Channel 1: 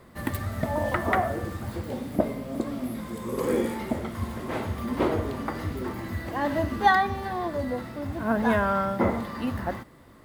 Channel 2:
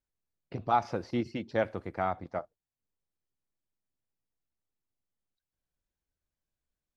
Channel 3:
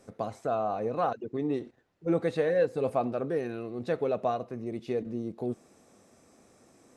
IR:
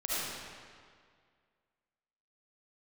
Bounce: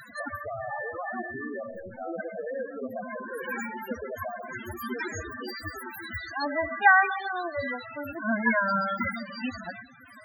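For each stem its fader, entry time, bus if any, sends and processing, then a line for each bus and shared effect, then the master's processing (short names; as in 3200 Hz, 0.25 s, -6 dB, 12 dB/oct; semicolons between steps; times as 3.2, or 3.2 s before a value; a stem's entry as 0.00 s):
+2.5 dB, 0.00 s, no bus, send -20 dB, spectral whitening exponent 0.1; upward compressor, threshold -26 dBFS; auto duck -8 dB, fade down 0.25 s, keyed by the second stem
-4.5 dB, 0.00 s, bus A, send -10.5 dB, hard clip -24.5 dBFS, distortion -10 dB
+0.5 dB, 0.00 s, bus A, send -21 dB, weighting filter A
bus A: 0.0 dB, high shelf 4400 Hz -7 dB; compressor 3:1, threshold -35 dBFS, peak gain reduction 9 dB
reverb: on, RT60 2.0 s, pre-delay 30 ms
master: bell 1600 Hz +4.5 dB 0.59 oct; loudest bins only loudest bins 8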